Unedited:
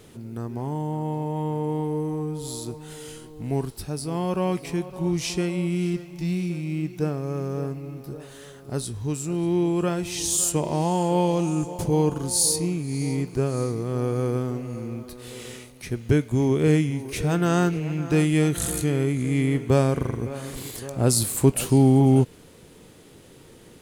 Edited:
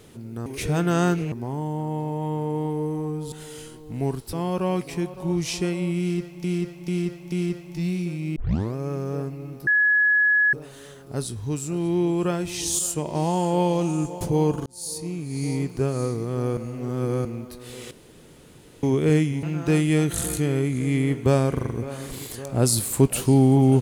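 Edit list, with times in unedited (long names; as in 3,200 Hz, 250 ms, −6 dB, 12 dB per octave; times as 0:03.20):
0:02.46–0:02.82: remove
0:03.83–0:04.09: remove
0:05.76–0:06.20: repeat, 4 plays
0:06.80: tape start 0.39 s
0:08.11: insert tone 1,690 Hz −15.5 dBFS 0.86 s
0:10.37–0:10.73: clip gain −3.5 dB
0:12.24–0:13.04: fade in
0:14.15–0:14.83: reverse
0:15.49–0:16.41: fill with room tone
0:17.01–0:17.87: move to 0:00.46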